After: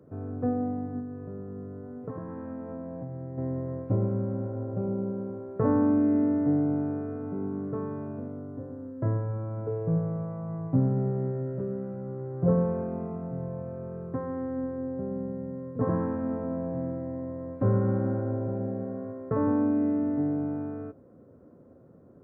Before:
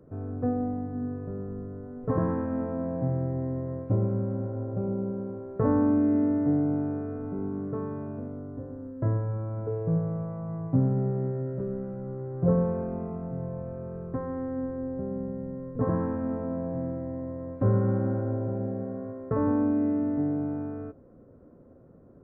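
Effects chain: high-pass 83 Hz; 0.99–3.38 s: compression 10:1, threshold -34 dBFS, peak gain reduction 13 dB

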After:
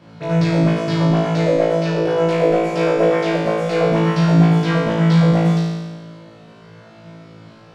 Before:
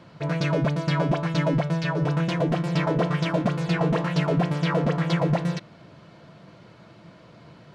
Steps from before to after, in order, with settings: 1.34–3.89 s: ten-band graphic EQ 125 Hz -10 dB, 250 Hz -7 dB, 500 Hz +11 dB, 1 kHz -4 dB, 2 kHz +3 dB, 4 kHz -3 dB; flutter echo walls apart 3.1 m, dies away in 1.3 s; trim -1 dB

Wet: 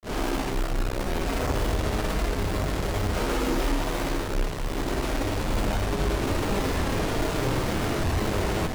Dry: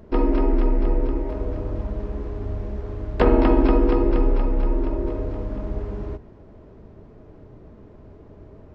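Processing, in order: one-bit comparator; granulator 261 ms, grains 29 per s, spray 100 ms; trim +3 dB

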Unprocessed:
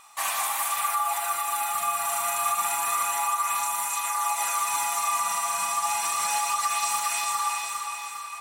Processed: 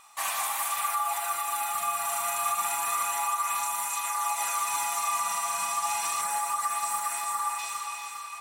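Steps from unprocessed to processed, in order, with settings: 6.21–7.59 s: high-order bell 3.9 kHz -8 dB; trim -2.5 dB

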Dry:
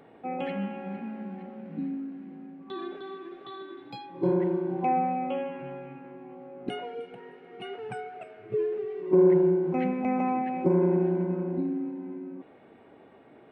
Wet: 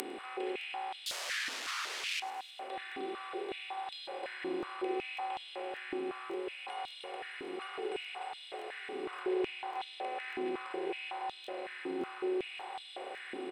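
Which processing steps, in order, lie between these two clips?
spectral levelling over time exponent 0.2; echo from a far wall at 200 m, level -6 dB; 1.06–2.20 s: integer overflow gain 24 dB; treble shelf 2.9 kHz -7 dB; feedback delay 103 ms, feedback 53%, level -16 dB; upward compressor, threshold -24 dBFS; differentiator; low-pass that closes with the level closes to 2.4 kHz, closed at -26 dBFS; crackling interface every 0.57 s, samples 1024, repeat, from 0.59 s; step-sequenced high-pass 5.4 Hz 280–3600 Hz

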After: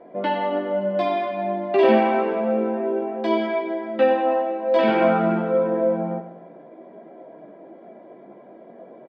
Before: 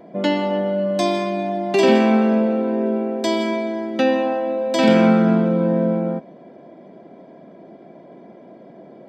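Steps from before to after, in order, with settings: tone controls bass -14 dB, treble -2 dB; chorus voices 6, 0.28 Hz, delay 17 ms, depth 4.6 ms; distance through air 430 m; feedback delay 98 ms, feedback 54%, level -12 dB; trim +5 dB

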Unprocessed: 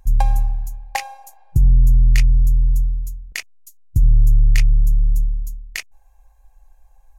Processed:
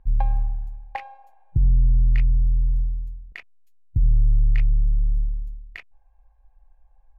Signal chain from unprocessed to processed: distance through air 490 m; trim -5 dB

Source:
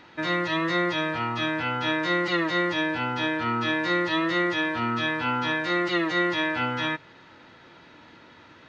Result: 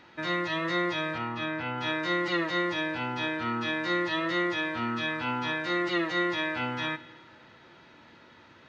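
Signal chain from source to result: 1.18–1.78 s: treble shelf 4.4 kHz -11 dB; reverberation, pre-delay 3 ms, DRR 10.5 dB; trim -4 dB

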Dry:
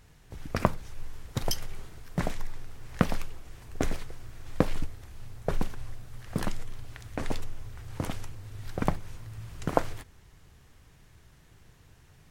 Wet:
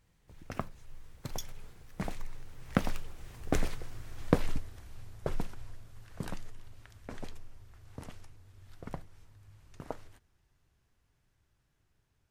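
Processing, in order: Doppler pass-by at 3.82 s, 30 m/s, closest 28 m

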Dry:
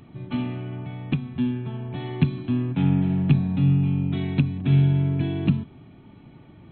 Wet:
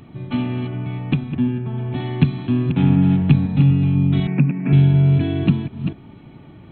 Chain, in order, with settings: chunks repeated in reverse 247 ms, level -8 dB; 1.32–1.78 s: distance through air 350 m; 4.27–4.73 s: Chebyshev band-pass 140–2500 Hz, order 5; trim +5 dB

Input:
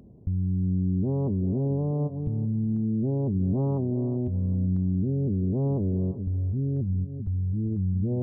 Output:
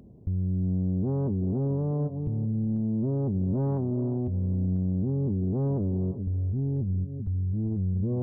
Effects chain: saturation -19 dBFS, distortion -23 dB

